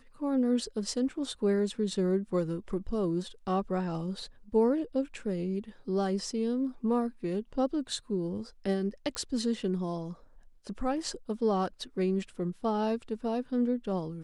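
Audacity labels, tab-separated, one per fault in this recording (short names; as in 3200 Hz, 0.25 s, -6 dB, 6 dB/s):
9.150000	9.150000	pop -19 dBFS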